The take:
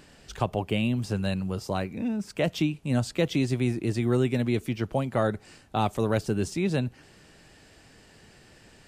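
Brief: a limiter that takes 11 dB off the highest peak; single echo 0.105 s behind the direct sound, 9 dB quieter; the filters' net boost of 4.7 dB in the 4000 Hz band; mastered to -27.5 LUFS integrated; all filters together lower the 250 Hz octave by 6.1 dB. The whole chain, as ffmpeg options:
-af "equalizer=f=250:t=o:g=-8,equalizer=f=4k:t=o:g=6,alimiter=limit=-23.5dB:level=0:latency=1,aecho=1:1:105:0.355,volume=6.5dB"

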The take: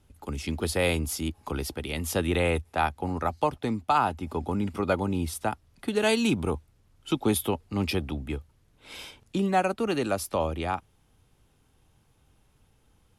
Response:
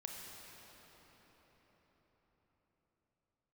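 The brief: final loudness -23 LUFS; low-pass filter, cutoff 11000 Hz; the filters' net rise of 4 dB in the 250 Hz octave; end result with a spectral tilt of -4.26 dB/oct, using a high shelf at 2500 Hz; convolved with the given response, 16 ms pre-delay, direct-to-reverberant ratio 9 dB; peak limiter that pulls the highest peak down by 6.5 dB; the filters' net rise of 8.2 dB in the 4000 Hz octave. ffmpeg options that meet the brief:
-filter_complex "[0:a]lowpass=11k,equalizer=f=250:t=o:g=5,highshelf=f=2.5k:g=7,equalizer=f=4k:t=o:g=4.5,alimiter=limit=-13.5dB:level=0:latency=1,asplit=2[a][b];[1:a]atrim=start_sample=2205,adelay=16[c];[b][c]afir=irnorm=-1:irlink=0,volume=-7dB[d];[a][d]amix=inputs=2:normalize=0,volume=3dB"

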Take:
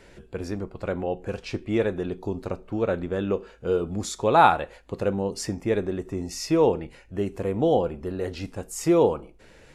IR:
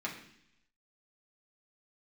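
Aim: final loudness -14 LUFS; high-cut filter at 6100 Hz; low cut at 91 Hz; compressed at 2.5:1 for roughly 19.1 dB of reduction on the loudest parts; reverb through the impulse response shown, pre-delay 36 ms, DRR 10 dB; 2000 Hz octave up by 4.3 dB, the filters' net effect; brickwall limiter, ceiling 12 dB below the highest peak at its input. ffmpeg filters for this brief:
-filter_complex "[0:a]highpass=91,lowpass=6.1k,equalizer=f=2k:t=o:g=6.5,acompressor=threshold=-40dB:ratio=2.5,alimiter=level_in=8dB:limit=-24dB:level=0:latency=1,volume=-8dB,asplit=2[a][b];[1:a]atrim=start_sample=2205,adelay=36[c];[b][c]afir=irnorm=-1:irlink=0,volume=-13.5dB[d];[a][d]amix=inputs=2:normalize=0,volume=29dB"

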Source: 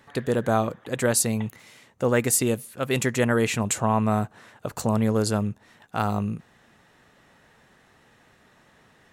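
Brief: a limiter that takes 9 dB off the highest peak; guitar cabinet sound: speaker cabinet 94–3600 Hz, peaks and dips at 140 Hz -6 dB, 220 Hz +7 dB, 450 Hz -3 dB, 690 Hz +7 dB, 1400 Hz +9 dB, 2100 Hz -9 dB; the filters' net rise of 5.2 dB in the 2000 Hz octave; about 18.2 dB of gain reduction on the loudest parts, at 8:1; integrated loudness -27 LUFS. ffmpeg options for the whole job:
-af "equalizer=f=2k:t=o:g=5,acompressor=threshold=-36dB:ratio=8,alimiter=level_in=7dB:limit=-24dB:level=0:latency=1,volume=-7dB,highpass=94,equalizer=f=140:t=q:w=4:g=-6,equalizer=f=220:t=q:w=4:g=7,equalizer=f=450:t=q:w=4:g=-3,equalizer=f=690:t=q:w=4:g=7,equalizer=f=1.4k:t=q:w=4:g=9,equalizer=f=2.1k:t=q:w=4:g=-9,lowpass=f=3.6k:w=0.5412,lowpass=f=3.6k:w=1.3066,volume=14dB"

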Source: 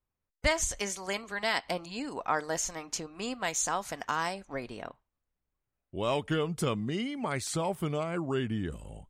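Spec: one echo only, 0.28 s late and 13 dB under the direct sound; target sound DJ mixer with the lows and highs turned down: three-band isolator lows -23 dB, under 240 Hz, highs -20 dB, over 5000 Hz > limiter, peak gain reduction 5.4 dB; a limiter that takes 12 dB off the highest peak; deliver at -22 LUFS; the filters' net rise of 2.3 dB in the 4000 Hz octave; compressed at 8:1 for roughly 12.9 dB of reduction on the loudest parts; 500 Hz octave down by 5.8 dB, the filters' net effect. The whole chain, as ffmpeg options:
-filter_complex "[0:a]equalizer=f=500:t=o:g=-7,equalizer=f=4k:t=o:g=6,acompressor=threshold=-35dB:ratio=8,alimiter=level_in=9dB:limit=-24dB:level=0:latency=1,volume=-9dB,acrossover=split=240 5000:gain=0.0708 1 0.1[a][b][c];[a][b][c]amix=inputs=3:normalize=0,aecho=1:1:280:0.224,volume=25.5dB,alimiter=limit=-9.5dB:level=0:latency=1"

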